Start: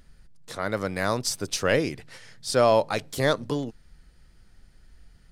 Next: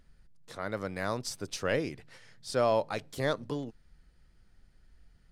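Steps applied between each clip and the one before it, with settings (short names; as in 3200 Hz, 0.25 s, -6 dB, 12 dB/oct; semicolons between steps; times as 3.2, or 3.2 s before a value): high shelf 4600 Hz -5 dB; gain -7 dB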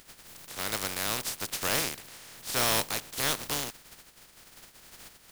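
spectral contrast lowered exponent 0.21; soft clip -24.5 dBFS, distortion -9 dB; gain +4.5 dB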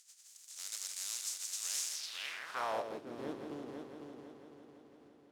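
multi-head echo 0.167 s, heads first and third, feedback 61%, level -6.5 dB; band-pass sweep 6900 Hz -> 320 Hz, 1.91–3.03; gain -1.5 dB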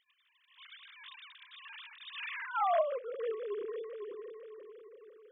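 sine-wave speech; gain +4 dB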